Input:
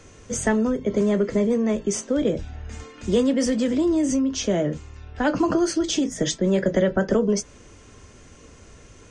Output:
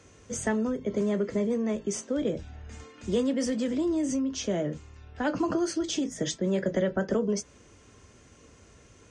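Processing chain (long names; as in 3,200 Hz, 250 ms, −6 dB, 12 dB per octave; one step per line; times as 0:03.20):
high-pass filter 53 Hz
level −6.5 dB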